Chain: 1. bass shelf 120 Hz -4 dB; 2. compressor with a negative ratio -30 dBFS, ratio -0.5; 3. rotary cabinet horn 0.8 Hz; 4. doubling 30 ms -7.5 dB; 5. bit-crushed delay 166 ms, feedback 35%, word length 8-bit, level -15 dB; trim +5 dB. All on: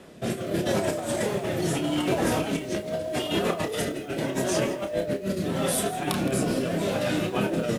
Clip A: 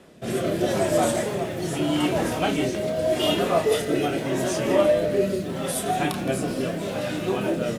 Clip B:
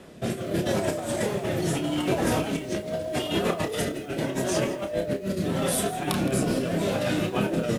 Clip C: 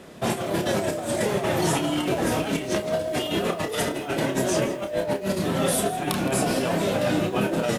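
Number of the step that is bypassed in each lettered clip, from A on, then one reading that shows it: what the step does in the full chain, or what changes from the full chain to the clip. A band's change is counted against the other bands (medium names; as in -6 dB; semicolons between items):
2, momentary loudness spread change +2 LU; 1, 125 Hz band +1.5 dB; 3, loudness change +2.0 LU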